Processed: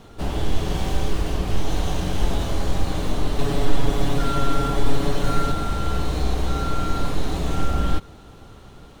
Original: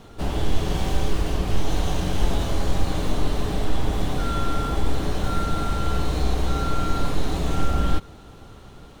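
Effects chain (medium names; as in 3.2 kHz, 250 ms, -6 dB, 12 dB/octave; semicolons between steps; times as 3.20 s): 3.38–5.52 s: comb 7.1 ms, depth 99%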